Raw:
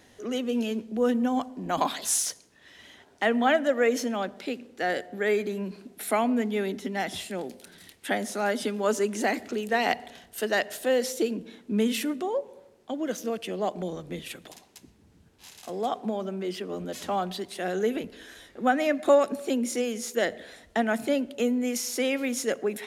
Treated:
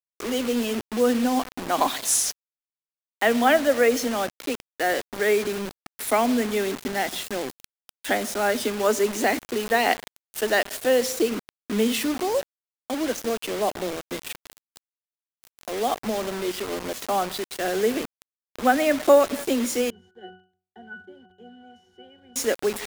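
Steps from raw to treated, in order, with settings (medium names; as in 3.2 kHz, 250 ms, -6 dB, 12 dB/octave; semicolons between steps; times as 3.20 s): high-pass 220 Hz 24 dB/octave; bit crusher 6-bit; 19.90–22.36 s: pitch-class resonator F#, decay 0.4 s; trim +4 dB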